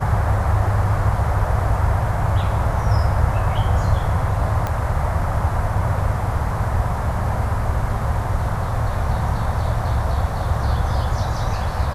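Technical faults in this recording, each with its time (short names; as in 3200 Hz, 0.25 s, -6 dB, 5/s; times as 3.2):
4.67 pop -11 dBFS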